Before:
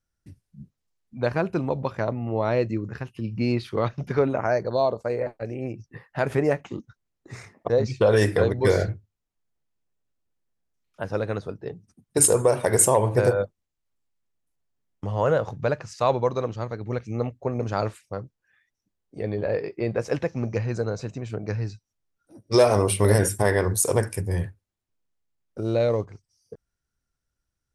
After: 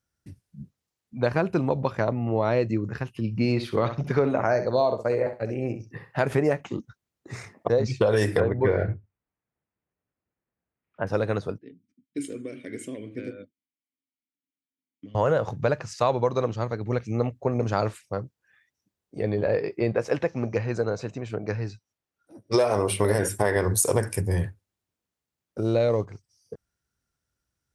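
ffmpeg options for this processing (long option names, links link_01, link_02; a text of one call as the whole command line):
ffmpeg -i in.wav -filter_complex "[0:a]asettb=1/sr,asplit=3[link_01][link_02][link_03];[link_01]atrim=end=3.354[link_04];[link_02]atrim=start=3.35:end=6.21,asetpts=PTS-STARTPTS,afade=type=in:duration=0.004:curve=qsin,afade=type=out:start_time=2.856:duration=0.004:curve=qsin,aecho=1:1:64|128:0.282|0.0479,atrim=end_sample=126126[link_05];[link_03]atrim=start=6.206[link_06];[link_04][link_05]acrossfade=duration=0.004:curve1=hsin:curve2=qsin[link_07];[link_07][link_06]acrossfade=duration=0.004:curve1=qsin:curve2=hsin,asettb=1/sr,asplit=3[link_08][link_09][link_10];[link_08]atrim=end=8.404[link_11];[link_09]atrim=start=8.4:end=11.07,asetpts=PTS-STARTPTS,afade=type=in:duration=0.004:curve=qsin,afade=type=out:start_time=2.666:duration=0.004:curve=qsin,lowpass=frequency=2400:width=0.5412,lowpass=frequency=2400:width=1.3066[link_12];[link_10]atrim=start=11.066[link_13];[link_11][link_12]acrossfade=duration=0.004:curve1=hsin:curve2=qsin[link_14];[link_14][link_13]acrossfade=duration=0.004:curve1=qsin:curve2=hsin,asettb=1/sr,asplit=3[link_15][link_16][link_17];[link_15]atrim=end=11.584[link_18];[link_16]atrim=start=11.58:end=15.15,asetpts=PTS-STARTPTS,afade=type=in:duration=0.004:curve=qsin,afade=type=out:start_time=3.566:duration=0.004:curve=qsin,asplit=3[link_19][link_20][link_21];[link_19]bandpass=frequency=270:width_type=q:width=8,volume=0dB[link_22];[link_20]bandpass=frequency=2290:width_type=q:width=8,volume=-6dB[link_23];[link_21]bandpass=frequency=3010:width_type=q:width=8,volume=-9dB[link_24];[link_22][link_23][link_24]amix=inputs=3:normalize=0[link_25];[link_17]atrim=start=15.146[link_26];[link_18][link_25]acrossfade=duration=0.004:curve1=hsin:curve2=qsin[link_27];[link_27][link_26]acrossfade=duration=0.004:curve1=qsin:curve2=hsin,asettb=1/sr,asplit=3[link_28][link_29][link_30];[link_28]atrim=end=19.924[link_31];[link_29]atrim=start=19.92:end=23.56,asetpts=PTS-STARTPTS,afade=type=in:duration=0.004:curve=qsin,afade=type=out:start_time=3.636:duration=0.004:curve=qsin,bass=frequency=250:gain=-5,treble=frequency=4000:gain=-5[link_32];[link_30]atrim=start=23.556[link_33];[link_31][link_32]acrossfade=duration=0.004:curve1=hsin:curve2=qsin[link_34];[link_34][link_33]acrossfade=duration=0.004:curve1=qsin:curve2=hsin,acompressor=threshold=-20dB:ratio=6,highpass=63,volume=2.5dB" out.wav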